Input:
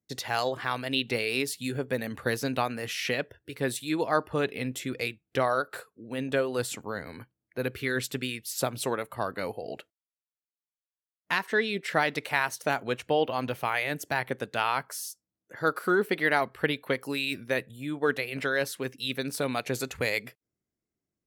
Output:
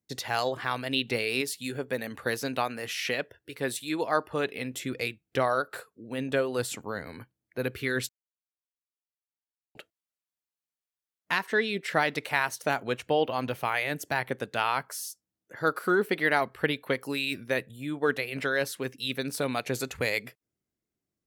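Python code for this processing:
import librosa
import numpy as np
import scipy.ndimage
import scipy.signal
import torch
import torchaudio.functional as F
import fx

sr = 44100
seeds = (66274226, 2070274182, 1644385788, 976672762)

y = fx.low_shelf(x, sr, hz=210.0, db=-7.5, at=(1.41, 4.74))
y = fx.edit(y, sr, fx.silence(start_s=8.09, length_s=1.66), tone=tone)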